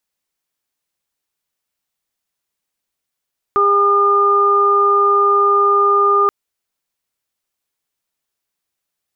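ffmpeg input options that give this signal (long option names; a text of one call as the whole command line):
ffmpeg -f lavfi -i "aevalsrc='0.158*sin(2*PI*404*t)+0.0447*sin(2*PI*808*t)+0.282*sin(2*PI*1212*t)':duration=2.73:sample_rate=44100" out.wav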